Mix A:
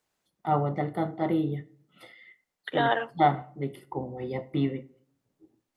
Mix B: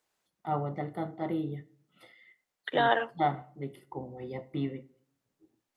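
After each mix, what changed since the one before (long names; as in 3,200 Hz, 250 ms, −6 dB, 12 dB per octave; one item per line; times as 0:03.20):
first voice −6.0 dB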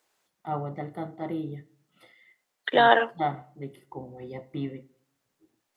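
second voice +7.0 dB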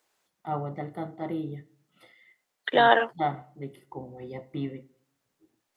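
second voice: send off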